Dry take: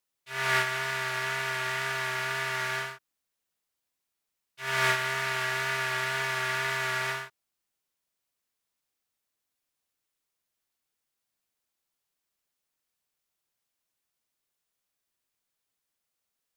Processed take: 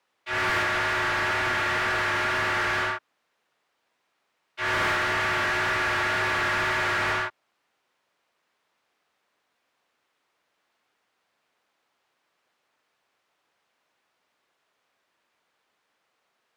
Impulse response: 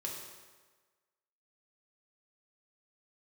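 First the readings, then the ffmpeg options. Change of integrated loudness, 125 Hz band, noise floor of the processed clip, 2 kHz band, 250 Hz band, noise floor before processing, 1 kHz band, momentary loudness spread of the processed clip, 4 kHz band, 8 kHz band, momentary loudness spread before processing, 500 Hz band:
+4.5 dB, +2.5 dB, -76 dBFS, +4.5 dB, +11.0 dB, -84 dBFS, +6.0 dB, 4 LU, +2.5 dB, -1.5 dB, 7 LU, +5.0 dB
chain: -filter_complex "[0:a]highshelf=f=6k:g=-11.5,afreqshift=-28,asplit=2[a][b];[b]highpass=f=720:p=1,volume=33dB,asoftclip=type=tanh:threshold=-10dB[c];[a][c]amix=inputs=2:normalize=0,lowpass=f=1.4k:p=1,volume=-6dB,volume=-4.5dB"

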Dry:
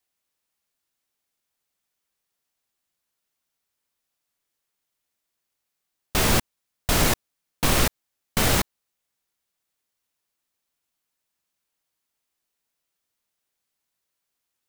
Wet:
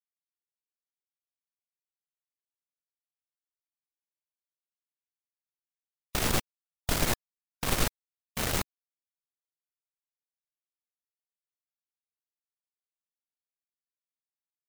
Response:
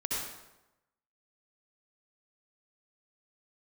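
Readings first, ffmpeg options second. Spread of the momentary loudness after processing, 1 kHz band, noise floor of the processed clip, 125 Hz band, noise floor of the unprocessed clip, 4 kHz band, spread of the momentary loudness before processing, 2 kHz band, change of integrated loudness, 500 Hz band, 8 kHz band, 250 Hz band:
9 LU, -8.0 dB, under -85 dBFS, -8.0 dB, -81 dBFS, -7.5 dB, 9 LU, -8.0 dB, -8.0 dB, -8.0 dB, -7.5 dB, -8.0 dB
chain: -af "afftfilt=real='re*gte(hypot(re,im),0.01)':imag='im*gte(hypot(re,im),0.01)':win_size=1024:overlap=0.75,aeval=exprs='0.447*(cos(1*acos(clip(val(0)/0.447,-1,1)))-cos(1*PI/2))+0.1*(cos(4*acos(clip(val(0)/0.447,-1,1)))-cos(4*PI/2))':c=same,volume=-8.5dB"

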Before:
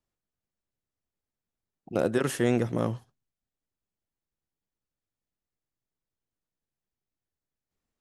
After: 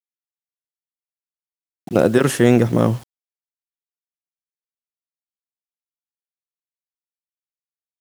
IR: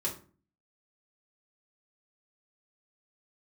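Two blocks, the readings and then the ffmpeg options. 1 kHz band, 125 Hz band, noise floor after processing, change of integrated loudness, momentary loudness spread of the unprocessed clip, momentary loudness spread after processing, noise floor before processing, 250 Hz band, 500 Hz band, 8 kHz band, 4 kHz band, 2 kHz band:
+10.5 dB, +12.0 dB, under -85 dBFS, +11.0 dB, 8 LU, 7 LU, under -85 dBFS, +11.5 dB, +10.5 dB, +10.0 dB, +10.0 dB, +10.0 dB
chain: -af "dynaudnorm=f=120:g=3:m=16dB,equalizer=f=170:w=0.71:g=2.5,acrusher=bits=6:mix=0:aa=0.000001,volume=-1dB"

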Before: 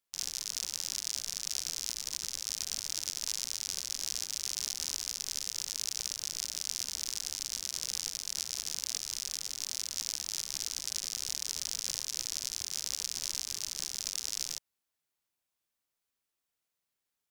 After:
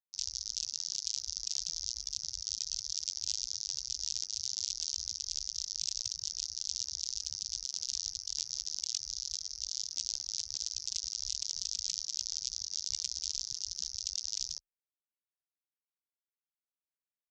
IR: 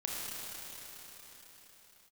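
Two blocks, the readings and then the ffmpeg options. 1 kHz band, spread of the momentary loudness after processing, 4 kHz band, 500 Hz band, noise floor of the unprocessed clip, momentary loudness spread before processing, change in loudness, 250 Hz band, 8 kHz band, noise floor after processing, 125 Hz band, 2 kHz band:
under -15 dB, 2 LU, 0.0 dB, under -15 dB, under -85 dBFS, 1 LU, -1.0 dB, under -10 dB, -1.5 dB, under -85 dBFS, n/a, -14.5 dB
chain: -af "lowpass=f=3.4k:p=1,afreqshift=25,afftdn=nr=26:nf=-44,volume=8dB"

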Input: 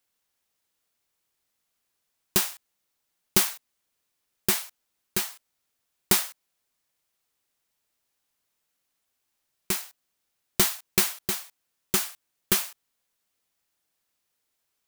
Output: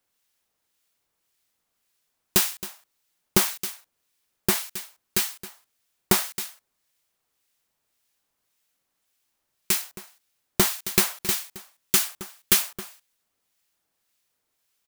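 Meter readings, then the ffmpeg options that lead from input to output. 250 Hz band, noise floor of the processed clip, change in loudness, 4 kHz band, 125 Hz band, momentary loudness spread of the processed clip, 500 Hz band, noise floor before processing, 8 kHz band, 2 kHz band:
+3.5 dB, -78 dBFS, +2.0 dB, +2.5 dB, +3.5 dB, 18 LU, +3.5 dB, -79 dBFS, +2.5 dB, +2.5 dB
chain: -filter_complex "[0:a]aecho=1:1:269:0.178,acrossover=split=1600[a][b];[a]aeval=exprs='val(0)*(1-0.5/2+0.5/2*cos(2*PI*1.8*n/s))':c=same[c];[b]aeval=exprs='val(0)*(1-0.5/2-0.5/2*cos(2*PI*1.8*n/s))':c=same[d];[c][d]amix=inputs=2:normalize=0,volume=5dB"

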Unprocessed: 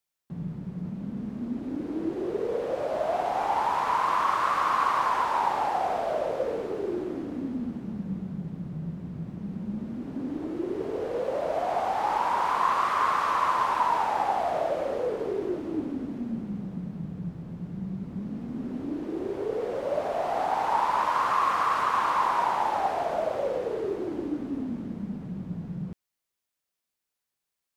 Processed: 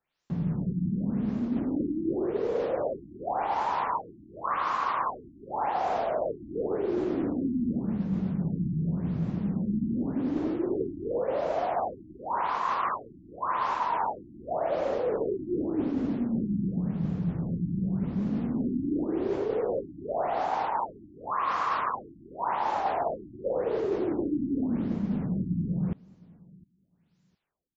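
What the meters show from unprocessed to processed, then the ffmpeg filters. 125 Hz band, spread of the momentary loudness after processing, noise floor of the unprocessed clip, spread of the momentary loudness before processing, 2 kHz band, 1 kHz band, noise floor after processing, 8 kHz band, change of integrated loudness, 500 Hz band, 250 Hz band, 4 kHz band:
+5.5 dB, 6 LU, -85 dBFS, 11 LU, -6.0 dB, -4.5 dB, -65 dBFS, n/a, -1.5 dB, -0.5 dB, +4.0 dB, -7.0 dB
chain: -af "areverse,acompressor=threshold=-33dB:ratio=16,areverse,aecho=1:1:710|1420:0.0631|0.0101,afftfilt=real='re*lt(b*sr/1024,340*pow(7700/340,0.5+0.5*sin(2*PI*0.89*pts/sr)))':imag='im*lt(b*sr/1024,340*pow(7700/340,0.5+0.5*sin(2*PI*0.89*pts/sr)))':win_size=1024:overlap=0.75,volume=8.5dB"

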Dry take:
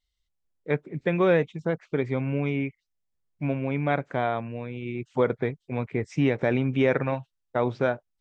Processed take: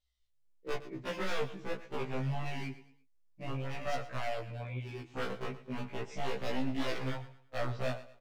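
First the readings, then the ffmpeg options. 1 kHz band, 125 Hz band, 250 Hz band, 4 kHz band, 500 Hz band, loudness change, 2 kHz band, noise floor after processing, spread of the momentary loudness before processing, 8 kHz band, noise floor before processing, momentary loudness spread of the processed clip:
-8.5 dB, -10.5 dB, -13.5 dB, -0.5 dB, -13.0 dB, -11.5 dB, -9.0 dB, -68 dBFS, 10 LU, n/a, -79 dBFS, 6 LU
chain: -filter_complex "[0:a]asplit=2[a][b];[b]acompressor=threshold=-33dB:ratio=12,volume=0dB[c];[a][c]amix=inputs=2:normalize=0,aeval=exprs='0.0944*(abs(mod(val(0)/0.0944+3,4)-2)-1)':c=same,flanger=delay=17:depth=3.4:speed=0.26,asplit=2[d][e];[e]aecho=0:1:114|228|342:0.178|0.0605|0.0206[f];[d][f]amix=inputs=2:normalize=0,flanger=delay=1.5:depth=9:regen=54:speed=1.6:shape=triangular,afftfilt=real='re*1.73*eq(mod(b,3),0)':imag='im*1.73*eq(mod(b,3),0)':win_size=2048:overlap=0.75"

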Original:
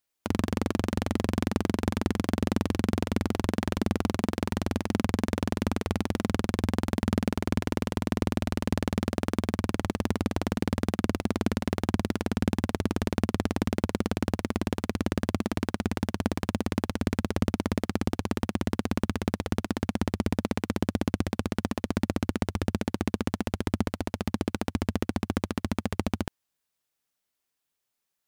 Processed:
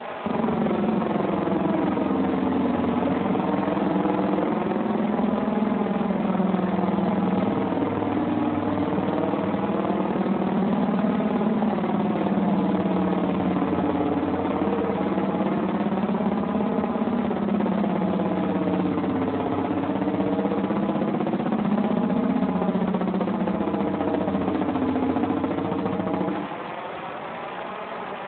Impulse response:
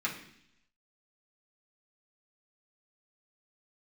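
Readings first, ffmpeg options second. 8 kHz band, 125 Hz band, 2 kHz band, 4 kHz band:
under -35 dB, +1.5 dB, +2.0 dB, -2.5 dB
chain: -filter_complex "[0:a]aeval=exprs='val(0)+0.5*0.0668*sgn(val(0))':c=same,flanger=delay=4.7:depth=2.4:regen=-11:speed=0.18:shape=triangular,alimiter=limit=-18.5dB:level=0:latency=1:release=69,adynamicsmooth=sensitivity=7:basefreq=570,aecho=1:1:723:0.0891,asplit=2[a][b];[1:a]atrim=start_sample=2205,lowpass=3.6k,adelay=73[c];[b][c]afir=irnorm=-1:irlink=0,volume=-8dB[d];[a][d]amix=inputs=2:normalize=0,adynamicequalizer=threshold=0.00178:dfrequency=1500:dqfactor=2.3:tfrequency=1500:tqfactor=2.3:attack=5:release=100:ratio=0.375:range=3:mode=cutabove:tftype=bell,highpass=150,asoftclip=type=tanh:threshold=-25.5dB,equalizer=f=810:w=0.54:g=9,acrusher=bits=5:mode=log:mix=0:aa=0.000001,volume=7dB" -ar 8000 -c:a libspeex -b:a 11k

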